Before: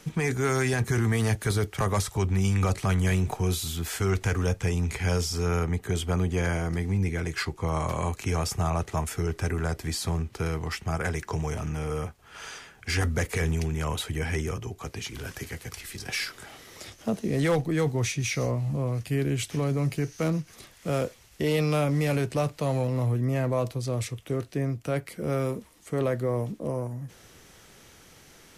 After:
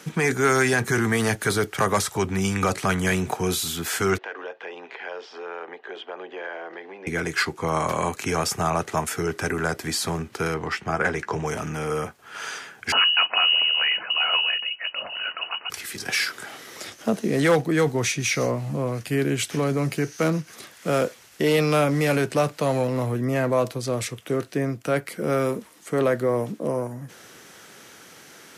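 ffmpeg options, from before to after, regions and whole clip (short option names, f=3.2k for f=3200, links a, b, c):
-filter_complex "[0:a]asettb=1/sr,asplit=3[a][b][c];[a]atrim=end=4.184[d];[b]atrim=start=4.18:end=7.07,asetpts=PTS-STARTPTS,afade=t=in:d=0.004:c=qsin,afade=t=out:st=2.886:d=0.004:c=qsin,aeval=exprs='if(lt(val(0),0),0.708*val(0),val(0))':c=same,highpass=f=420:w=0.5412,highpass=f=420:w=1.3066,equalizer=f=430:t=q:w=4:g=-3,equalizer=f=1.3k:t=q:w=4:g=-8,equalizer=f=2.2k:t=q:w=4:g=-8,lowpass=f=3k:w=0.5412,lowpass=f=3k:w=1.3066,acompressor=threshold=-41dB:ratio=2:attack=3.2:release=140:knee=1:detection=peak[e];[c]atrim=start=7.066[f];[d][e]acrossfade=d=0.004:c1=hsin:c2=qsin[g];[g][f]acrossfade=d=0.004:c1=qsin:c2=hsin,asettb=1/sr,asplit=3[h][i][j];[h]atrim=end=10.544[k];[i]atrim=start=10.54:end=11.46,asetpts=PTS-STARTPTS,afade=t=in:d=0.004:c=qsin,afade=t=out:st=0.916:d=0.004:c=qsin,aemphasis=mode=reproduction:type=50fm,asplit=2[l][m];[m]adelay=15,volume=-12.5dB[n];[l][n]amix=inputs=2:normalize=0,atrim=end_sample=40572[o];[j]atrim=start=11.456[p];[k][o]acrossfade=d=0.004:c1=hsin:c2=qsin[q];[q][p]acrossfade=d=0.004:c1=qsin:c2=hsin,asettb=1/sr,asplit=3[r][s][t];[r]atrim=end=12.924[u];[s]atrim=start=12.92:end=15.7,asetpts=PTS-STARTPTS,afade=t=in:d=0.004:c=qsin,afade=t=out:st=2.776:d=0.004:c=qsin,lowpass=f=2.6k:t=q:w=0.5098,lowpass=f=2.6k:t=q:w=0.6013,lowpass=f=2.6k:t=q:w=0.9,lowpass=f=2.6k:t=q:w=2.563,afreqshift=-3000,bandreject=f=50:t=h:w=6,bandreject=f=100:t=h:w=6,bandreject=f=150:t=h:w=6,bandreject=f=200:t=h:w=6,bandreject=f=250:t=h:w=6,bandreject=f=300:t=h:w=6,bandreject=f=350:t=h:w=6,bandreject=f=400:t=h:w=6[v];[t]atrim=start=15.696[w];[u][v]acrossfade=d=0.004:c1=hsin:c2=qsin[x];[x][w]acrossfade=d=0.004:c1=qsin:c2=hsin,highpass=190,equalizer=f=1.5k:w=2.9:g=4.5,volume=6dB"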